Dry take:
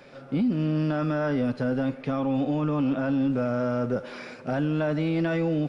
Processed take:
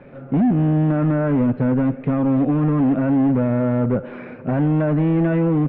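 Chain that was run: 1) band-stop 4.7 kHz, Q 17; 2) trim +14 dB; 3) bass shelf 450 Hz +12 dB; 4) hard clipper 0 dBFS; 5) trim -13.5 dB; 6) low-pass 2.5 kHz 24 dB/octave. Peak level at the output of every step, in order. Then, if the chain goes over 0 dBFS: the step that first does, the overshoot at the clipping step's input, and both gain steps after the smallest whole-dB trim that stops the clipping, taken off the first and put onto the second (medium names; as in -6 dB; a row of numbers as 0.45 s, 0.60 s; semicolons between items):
-18.0 dBFS, -4.0 dBFS, +5.5 dBFS, 0.0 dBFS, -13.5 dBFS, -13.0 dBFS; step 3, 5.5 dB; step 2 +8 dB, step 5 -7.5 dB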